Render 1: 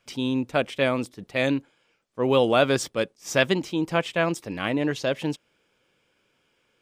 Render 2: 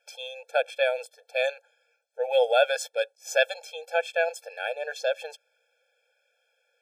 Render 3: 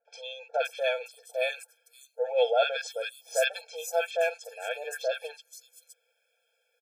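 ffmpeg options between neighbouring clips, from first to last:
-af "afftfilt=real='re*eq(mod(floor(b*sr/1024/450),2),1)':imag='im*eq(mod(floor(b*sr/1024/450),2),1)':win_size=1024:overlap=0.75"
-filter_complex "[0:a]highshelf=f=7800:g=9.5,aecho=1:1:4.4:0.54,acrossover=split=1200|5900[s0][s1][s2];[s1]adelay=50[s3];[s2]adelay=570[s4];[s0][s3][s4]amix=inputs=3:normalize=0,volume=0.708"

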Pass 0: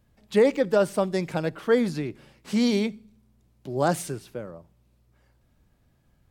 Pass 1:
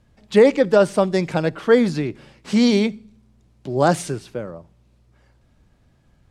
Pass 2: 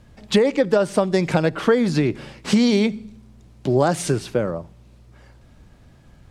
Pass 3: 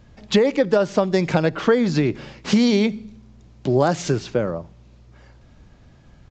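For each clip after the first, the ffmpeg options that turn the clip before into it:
-af "lowpass=8400,volume=2.11"
-af "acompressor=threshold=0.0794:ratio=12,volume=2.66"
-af "aresample=16000,aresample=44100"

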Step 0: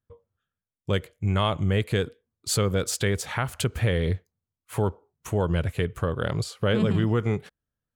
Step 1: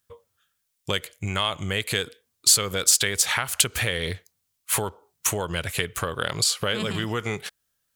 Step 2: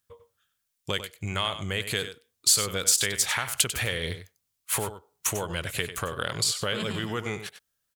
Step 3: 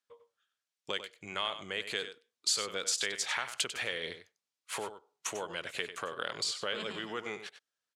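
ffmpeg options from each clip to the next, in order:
-af "lowshelf=f=450:g=-11,acompressor=threshold=0.0178:ratio=4,highshelf=f=2400:g=12,volume=2.82"
-af "aecho=1:1:96:0.282,volume=0.668"
-af "highpass=300,lowpass=6000,volume=0.531"

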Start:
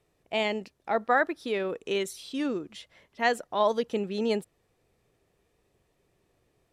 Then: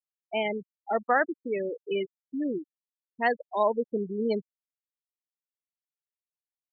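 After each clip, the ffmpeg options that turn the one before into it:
-af "afftfilt=real='re*gte(hypot(re,im),0.0891)':imag='im*gte(hypot(re,im),0.0891)':win_size=1024:overlap=0.75"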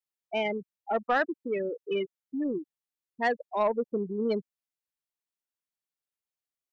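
-af "asoftclip=type=tanh:threshold=0.141"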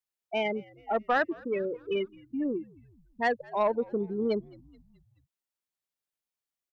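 -filter_complex "[0:a]asplit=5[s0][s1][s2][s3][s4];[s1]adelay=214,afreqshift=-84,volume=0.0631[s5];[s2]adelay=428,afreqshift=-168,volume=0.0359[s6];[s3]adelay=642,afreqshift=-252,volume=0.0204[s7];[s4]adelay=856,afreqshift=-336,volume=0.0117[s8];[s0][s5][s6][s7][s8]amix=inputs=5:normalize=0"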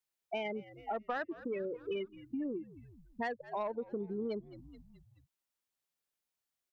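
-af "acompressor=threshold=0.0126:ratio=4,volume=1.19"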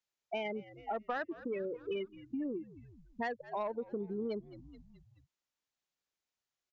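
-af "aresample=16000,aresample=44100"

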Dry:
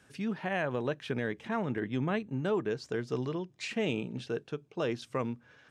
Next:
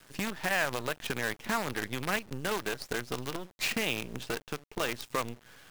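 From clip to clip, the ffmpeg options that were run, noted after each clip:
-filter_complex "[0:a]acrossover=split=1000[s0][s1];[s0]acompressor=threshold=0.01:ratio=8[s2];[s2][s1]amix=inputs=2:normalize=0,acrusher=bits=7:dc=4:mix=0:aa=0.000001,volume=2.24"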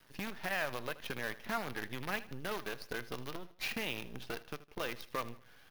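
-af "equalizer=f=7700:w=2.6:g=-11,flanger=delay=1:depth=1:regen=83:speed=0.51:shape=triangular,aecho=1:1:79|158|237:0.133|0.0533|0.0213,volume=0.794"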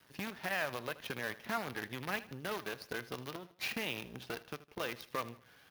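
-af "highpass=67"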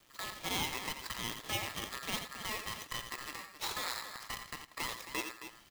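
-af "highpass=f=200:p=1,aecho=1:1:87.46|268.2:0.355|0.282,aeval=exprs='val(0)*sgn(sin(2*PI*1500*n/s))':c=same"

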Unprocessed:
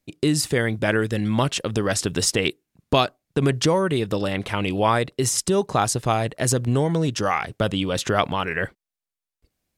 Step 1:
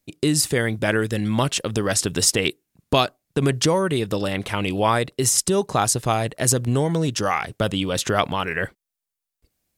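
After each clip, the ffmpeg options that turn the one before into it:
-af "highshelf=f=6700:g=7.5"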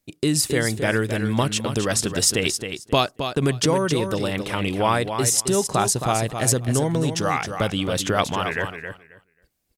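-af "aecho=1:1:268|536|804:0.398|0.0677|0.0115,volume=0.891"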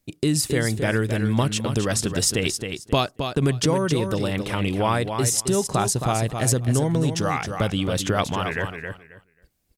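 -filter_complex "[0:a]asplit=2[s0][s1];[s1]acompressor=threshold=0.0282:ratio=6,volume=0.794[s2];[s0][s2]amix=inputs=2:normalize=0,lowshelf=f=210:g=6,volume=0.631"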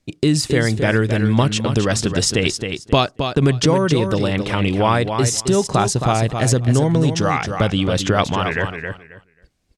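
-af "lowpass=6600,volume=1.88"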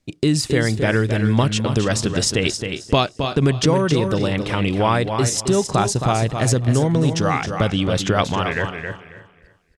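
-af "aecho=1:1:305|610|915:0.15|0.0449|0.0135,volume=0.841"

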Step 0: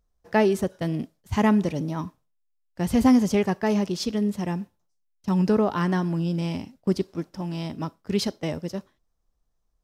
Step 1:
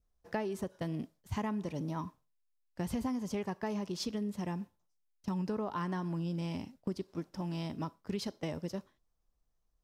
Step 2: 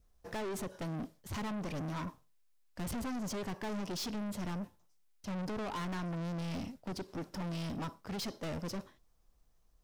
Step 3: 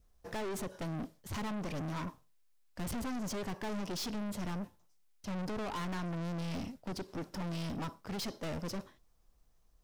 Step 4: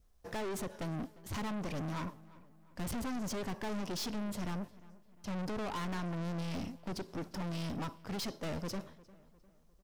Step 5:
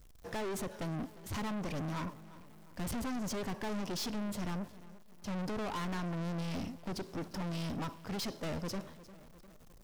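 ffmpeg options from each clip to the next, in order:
-af "adynamicequalizer=threshold=0.00794:dfrequency=1000:dqfactor=3.8:tfrequency=1000:tqfactor=3.8:attack=5:release=100:ratio=0.375:range=3:mode=boostabove:tftype=bell,acompressor=threshold=0.0398:ratio=6,volume=0.562"
-af "aeval=exprs='(tanh(200*val(0)+0.25)-tanh(0.25))/200':c=same,volume=2.99"
-af "aeval=exprs='clip(val(0),-1,0.00794)':c=same,volume=1.12"
-filter_complex "[0:a]asplit=2[s0][s1];[s1]adelay=352,lowpass=f=2900:p=1,volume=0.1,asplit=2[s2][s3];[s3]adelay=352,lowpass=f=2900:p=1,volume=0.47,asplit=2[s4][s5];[s5]adelay=352,lowpass=f=2900:p=1,volume=0.47,asplit=2[s6][s7];[s7]adelay=352,lowpass=f=2900:p=1,volume=0.47[s8];[s0][s2][s4][s6][s8]amix=inputs=5:normalize=0"
-af "aeval=exprs='val(0)+0.5*0.002*sgn(val(0))':c=same"

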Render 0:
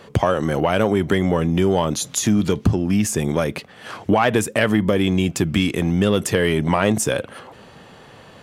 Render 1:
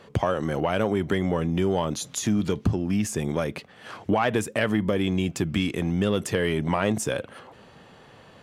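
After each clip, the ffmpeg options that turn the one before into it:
-af "highshelf=f=8300:g=-5,volume=0.501"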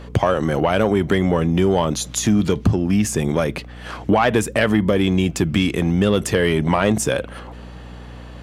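-af "aeval=exprs='val(0)+0.00708*(sin(2*PI*60*n/s)+sin(2*PI*2*60*n/s)/2+sin(2*PI*3*60*n/s)/3+sin(2*PI*4*60*n/s)/4+sin(2*PI*5*60*n/s)/5)':c=same,acontrast=87"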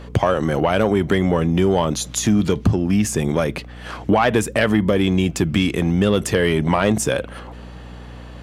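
-af "asoftclip=type=hard:threshold=0.501"

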